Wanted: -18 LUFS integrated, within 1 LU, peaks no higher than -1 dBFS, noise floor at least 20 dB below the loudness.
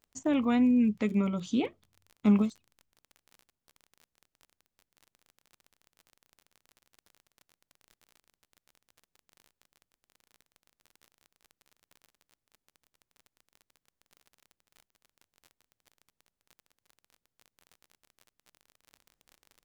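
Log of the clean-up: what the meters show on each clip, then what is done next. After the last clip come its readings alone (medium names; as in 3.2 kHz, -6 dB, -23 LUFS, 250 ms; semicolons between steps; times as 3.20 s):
tick rate 33 per s; loudness -27.5 LUFS; peak level -14.0 dBFS; loudness target -18.0 LUFS
-> de-click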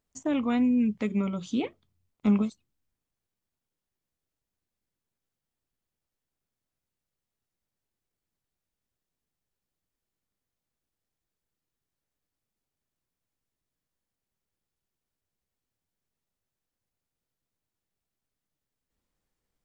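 tick rate 0 per s; loudness -27.5 LUFS; peak level -14.0 dBFS; loudness target -18.0 LUFS
-> trim +9.5 dB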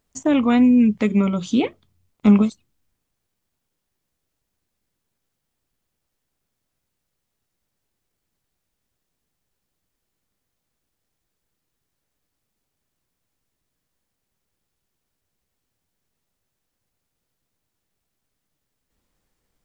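loudness -18.0 LUFS; peak level -4.5 dBFS; noise floor -79 dBFS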